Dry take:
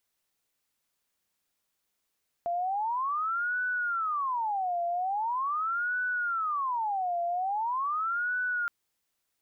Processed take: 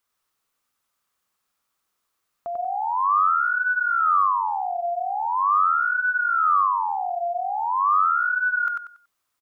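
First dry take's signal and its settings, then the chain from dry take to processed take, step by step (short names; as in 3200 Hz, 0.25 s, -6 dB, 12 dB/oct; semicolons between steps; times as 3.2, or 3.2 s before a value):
siren wail 689–1490 Hz 0.42/s sine -27 dBFS 6.22 s
bell 1200 Hz +10.5 dB 0.56 oct; feedback echo 94 ms, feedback 28%, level -3 dB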